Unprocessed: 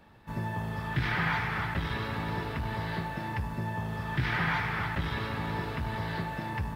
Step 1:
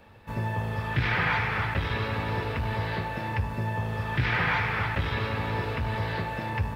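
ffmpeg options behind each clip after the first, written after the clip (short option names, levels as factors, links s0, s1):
-filter_complex "[0:a]equalizer=f=100:t=o:w=0.33:g=6,equalizer=f=160:t=o:w=0.33:g=-6,equalizer=f=315:t=o:w=0.33:g=-3,equalizer=f=500:t=o:w=0.33:g=7,equalizer=f=2500:t=o:w=0.33:g=5,acrossover=split=6000[s0][s1];[s1]alimiter=level_in=39.8:limit=0.0631:level=0:latency=1:release=344,volume=0.0251[s2];[s0][s2]amix=inputs=2:normalize=0,volume=1.41"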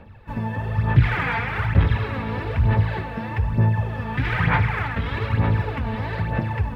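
-af "bass=f=250:g=6,treble=f=4000:g=-10,aphaser=in_gain=1:out_gain=1:delay=4.4:decay=0.58:speed=1.1:type=sinusoidal"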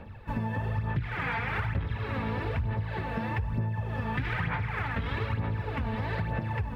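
-af "acompressor=threshold=0.0447:ratio=10"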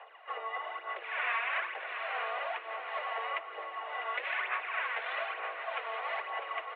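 -filter_complex "[0:a]asplit=2[s0][s1];[s1]aecho=0:1:650|1300|1950|2600:0.355|0.117|0.0386|0.0128[s2];[s0][s2]amix=inputs=2:normalize=0,highpass=f=340:t=q:w=0.5412,highpass=f=340:t=q:w=1.307,lowpass=f=3100:t=q:w=0.5176,lowpass=f=3100:t=q:w=0.7071,lowpass=f=3100:t=q:w=1.932,afreqshift=230"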